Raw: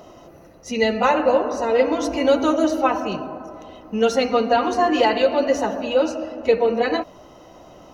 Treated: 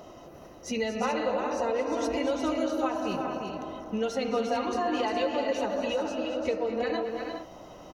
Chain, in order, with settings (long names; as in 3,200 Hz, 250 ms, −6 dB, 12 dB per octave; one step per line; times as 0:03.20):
downward compressor 4 to 1, threshold −25 dBFS, peak gain reduction 11.5 dB
multi-tap delay 218/240/350/416 ms −13/−14/−6/−9.5 dB
level −3 dB